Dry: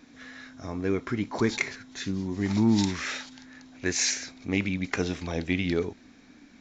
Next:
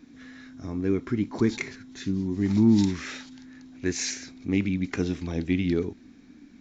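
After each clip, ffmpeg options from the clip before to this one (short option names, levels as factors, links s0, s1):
-af "lowshelf=f=430:t=q:w=1.5:g=6.5,volume=0.596"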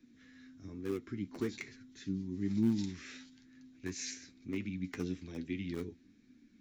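-filter_complex "[0:a]acrossover=split=110|550|1200[s0][s1][s2][s3];[s0]acompressor=threshold=0.00631:ratio=6[s4];[s2]acrusher=bits=5:mix=0:aa=0.000001[s5];[s4][s1][s5][s3]amix=inputs=4:normalize=0,flanger=delay=7.7:depth=4.2:regen=40:speed=1.1:shape=triangular,volume=0.422"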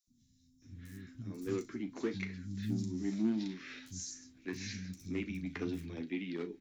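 -filter_complex "[0:a]asplit=2[s0][s1];[s1]asoftclip=type=hard:threshold=0.0237,volume=0.282[s2];[s0][s2]amix=inputs=2:normalize=0,asplit=2[s3][s4];[s4]adelay=37,volume=0.224[s5];[s3][s5]amix=inputs=2:normalize=0,acrossover=split=180|5200[s6][s7][s8];[s6]adelay=70[s9];[s7]adelay=620[s10];[s9][s10][s8]amix=inputs=3:normalize=0"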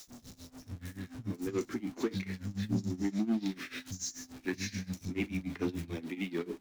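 -filter_complex "[0:a]aeval=exprs='val(0)+0.5*0.00335*sgn(val(0))':c=same,tremolo=f=6.9:d=0.9,asplit=2[s0][s1];[s1]asoftclip=type=hard:threshold=0.0188,volume=0.631[s2];[s0][s2]amix=inputs=2:normalize=0,volume=1.33"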